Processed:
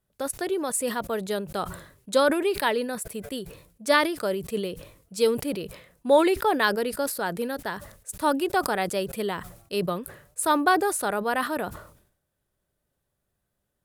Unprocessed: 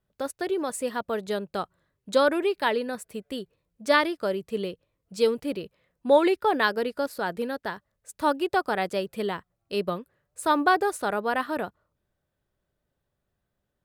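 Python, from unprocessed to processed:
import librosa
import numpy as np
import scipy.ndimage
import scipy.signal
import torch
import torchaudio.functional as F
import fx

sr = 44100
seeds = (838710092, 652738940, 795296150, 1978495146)

y = fx.peak_eq(x, sr, hz=11000.0, db=10.0, octaves=1.1)
y = fx.sustainer(y, sr, db_per_s=89.0)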